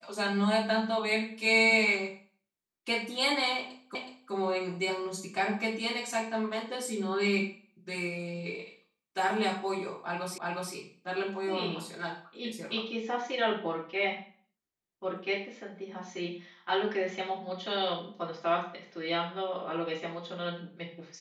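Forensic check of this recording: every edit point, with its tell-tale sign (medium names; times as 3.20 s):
3.95 s: repeat of the last 0.37 s
10.38 s: repeat of the last 0.36 s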